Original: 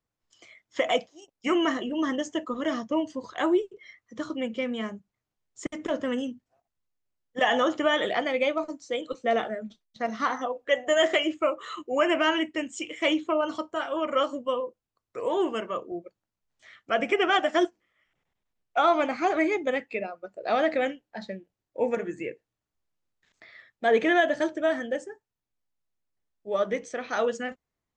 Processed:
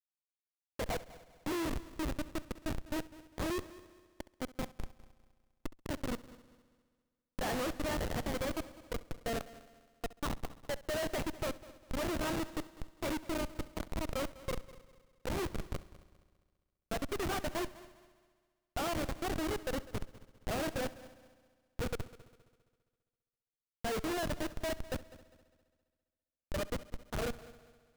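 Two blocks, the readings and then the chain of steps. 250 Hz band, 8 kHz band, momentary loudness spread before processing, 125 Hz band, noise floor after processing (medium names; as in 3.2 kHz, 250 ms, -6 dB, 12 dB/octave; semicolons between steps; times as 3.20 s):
-10.5 dB, -1.0 dB, 15 LU, no reading, under -85 dBFS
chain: knee-point frequency compression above 2.4 kHz 1.5:1; Schmitt trigger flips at -23 dBFS; multi-head delay 67 ms, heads first and third, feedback 54%, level -19 dB; trim -5.5 dB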